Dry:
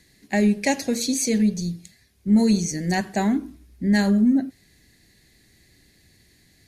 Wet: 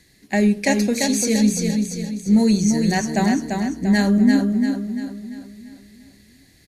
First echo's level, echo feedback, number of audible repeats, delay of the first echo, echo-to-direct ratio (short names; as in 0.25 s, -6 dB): -4.5 dB, 45%, 5, 0.343 s, -3.5 dB